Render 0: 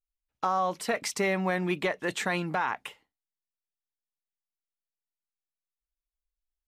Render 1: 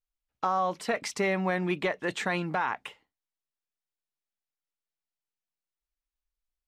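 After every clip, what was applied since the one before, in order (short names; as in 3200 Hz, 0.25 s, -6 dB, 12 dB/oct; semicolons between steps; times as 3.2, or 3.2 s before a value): high shelf 9100 Hz -12 dB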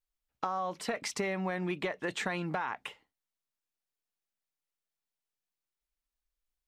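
compressor, threshold -30 dBFS, peak gain reduction 7 dB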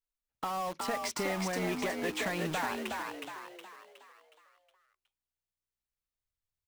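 in parallel at -5.5 dB: companded quantiser 2-bit; on the sum: frequency-shifting echo 0.366 s, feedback 46%, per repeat +61 Hz, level -3.5 dB; gain -7 dB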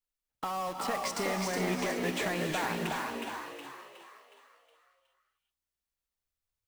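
non-linear reverb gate 0.45 s rising, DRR 4 dB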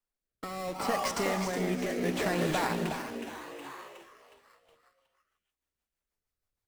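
in parallel at -4 dB: decimation with a swept rate 11×, swing 60% 0.48 Hz; on the sum: rotary speaker horn 0.7 Hz, later 6.3 Hz, at 3.77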